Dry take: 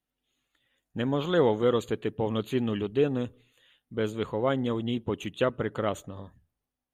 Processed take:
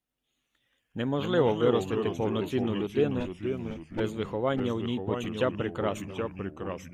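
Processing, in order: 3.20–4.00 s: comb filter that takes the minimum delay 3.5 ms; ever faster or slower copies 111 ms, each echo -2 st, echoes 3, each echo -6 dB; trim -1.5 dB

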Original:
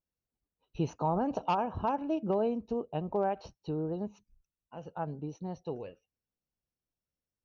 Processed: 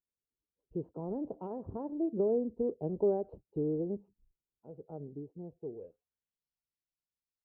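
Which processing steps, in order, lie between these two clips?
Doppler pass-by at 3.14 s, 18 m/s, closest 21 m; low-pass sweep 420 Hz -> 4.9 kHz, 5.78–6.44 s; trim -2.5 dB

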